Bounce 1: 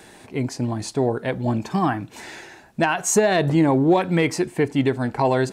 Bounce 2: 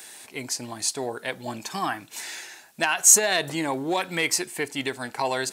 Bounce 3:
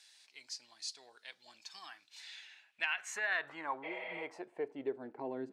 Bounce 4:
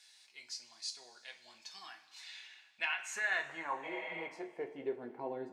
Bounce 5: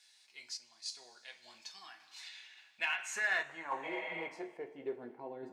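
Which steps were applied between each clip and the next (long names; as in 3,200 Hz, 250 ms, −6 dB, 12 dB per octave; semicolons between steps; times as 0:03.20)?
spectral tilt +4.5 dB per octave; level −4 dB
bass and treble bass +1 dB, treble −10 dB; band-pass filter sweep 4,800 Hz → 280 Hz, 0:02.02–0:05.39; healed spectral selection 0:03.86–0:04.20, 490–5,600 Hz after; level −4 dB
coupled-rooms reverb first 0.25 s, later 2.2 s, from −18 dB, DRR 2.5 dB; level −1.5 dB
sample-and-hold tremolo; in parallel at −12 dB: hard clipping −34.5 dBFS, distortion −10 dB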